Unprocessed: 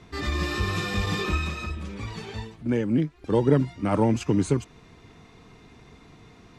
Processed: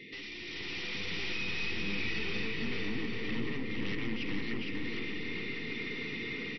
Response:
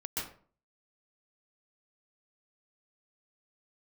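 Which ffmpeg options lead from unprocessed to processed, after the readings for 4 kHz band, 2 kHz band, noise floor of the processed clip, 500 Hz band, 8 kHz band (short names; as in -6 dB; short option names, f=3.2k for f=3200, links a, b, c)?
-0.5 dB, 0.0 dB, -43 dBFS, -14.0 dB, -13.0 dB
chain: -filter_complex "[0:a]alimiter=limit=-17.5dB:level=0:latency=1:release=466,highpass=290,lowpass=3.3k,aeval=exprs='0.119*(cos(1*acos(clip(val(0)/0.119,-1,1)))-cos(1*PI/2))+0.0119*(cos(3*acos(clip(val(0)/0.119,-1,1)))-cos(3*PI/2))+0.0237*(cos(4*acos(clip(val(0)/0.119,-1,1)))-cos(4*PI/2))+0.00596*(cos(8*acos(clip(val(0)/0.119,-1,1)))-cos(8*PI/2))':c=same,acompressor=threshold=-46dB:ratio=3,aeval=exprs='0.0282*sin(PI/2*3.16*val(0)/0.0282)':c=same,dynaudnorm=f=430:g=3:m=11dB,asplit=2[a][b];[b]adelay=408,lowpass=f=2.1k:p=1,volume=-5.5dB,asplit=2[c][d];[d]adelay=408,lowpass=f=2.1k:p=1,volume=0.52,asplit=2[e][f];[f]adelay=408,lowpass=f=2.1k:p=1,volume=0.52,asplit=2[g][h];[h]adelay=408,lowpass=f=2.1k:p=1,volume=0.52,asplit=2[i][j];[j]adelay=408,lowpass=f=2.1k:p=1,volume=0.52,asplit=2[k][l];[l]adelay=408,lowpass=f=2.1k:p=1,volume=0.52,asplit=2[m][n];[n]adelay=408,lowpass=f=2.1k:p=1,volume=0.52[o];[c][e][g][i][k][m][o]amix=inputs=7:normalize=0[p];[a][p]amix=inputs=2:normalize=0,afftfilt=real='re*(1-between(b*sr/4096,520,1800))':imag='im*(1-between(b*sr/4096,520,1800))':win_size=4096:overlap=0.75,asplit=2[q][r];[r]highpass=f=720:p=1,volume=17dB,asoftclip=type=tanh:threshold=-22dB[s];[q][s]amix=inputs=2:normalize=0,lowpass=f=1.5k:p=1,volume=-6dB,equalizer=f=490:t=o:w=1.4:g=-11,asplit=2[t][u];[u]aecho=0:1:460|759|953.4|1080|1162:0.631|0.398|0.251|0.158|0.1[v];[t][v]amix=inputs=2:normalize=0,volume=-4.5dB" -ar 22050 -c:a mp2 -b:a 48k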